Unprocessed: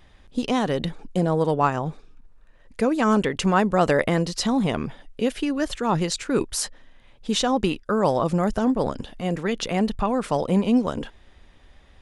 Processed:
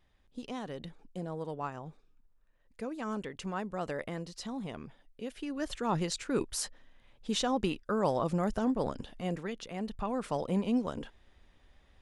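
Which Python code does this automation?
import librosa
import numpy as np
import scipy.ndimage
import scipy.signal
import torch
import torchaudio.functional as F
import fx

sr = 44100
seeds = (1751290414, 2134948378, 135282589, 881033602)

y = fx.gain(x, sr, db=fx.line((5.26, -17.0), (5.74, -8.5), (9.3, -8.5), (9.66, -17.0), (10.15, -10.0)))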